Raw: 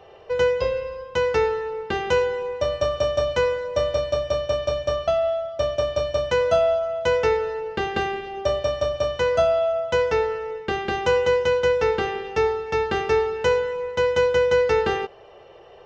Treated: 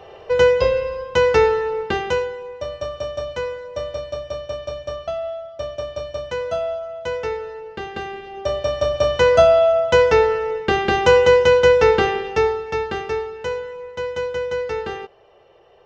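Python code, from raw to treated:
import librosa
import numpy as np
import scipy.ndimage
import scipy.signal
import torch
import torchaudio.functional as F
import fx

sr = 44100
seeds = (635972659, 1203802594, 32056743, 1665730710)

y = fx.gain(x, sr, db=fx.line((1.81, 6.0), (2.37, -5.0), (8.03, -5.0), (9.18, 7.0), (12.03, 7.0), (13.31, -5.5)))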